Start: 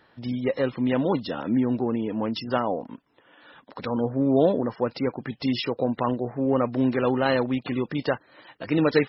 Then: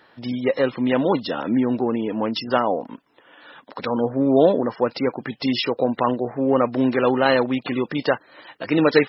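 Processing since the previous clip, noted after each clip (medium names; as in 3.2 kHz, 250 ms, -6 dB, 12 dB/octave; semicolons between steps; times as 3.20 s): bass shelf 150 Hz -12 dB; trim +6 dB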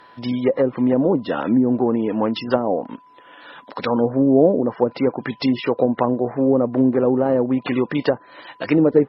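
whistle 1 kHz -51 dBFS; low-pass that closes with the level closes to 520 Hz, closed at -15 dBFS; trim +3.5 dB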